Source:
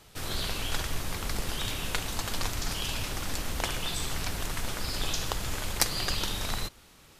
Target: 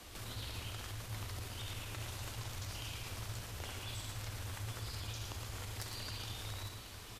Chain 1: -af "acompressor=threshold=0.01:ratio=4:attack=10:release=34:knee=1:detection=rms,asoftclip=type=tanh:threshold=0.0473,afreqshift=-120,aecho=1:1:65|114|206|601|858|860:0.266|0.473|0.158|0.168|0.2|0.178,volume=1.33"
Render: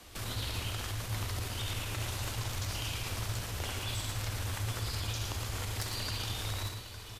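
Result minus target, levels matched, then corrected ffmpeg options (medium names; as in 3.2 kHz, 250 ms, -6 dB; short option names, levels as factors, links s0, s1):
compression: peak gain reduction -8 dB
-af "acompressor=threshold=0.00299:ratio=4:attack=10:release=34:knee=1:detection=rms,asoftclip=type=tanh:threshold=0.0473,afreqshift=-120,aecho=1:1:65|114|206|601|858|860:0.266|0.473|0.158|0.168|0.2|0.178,volume=1.33"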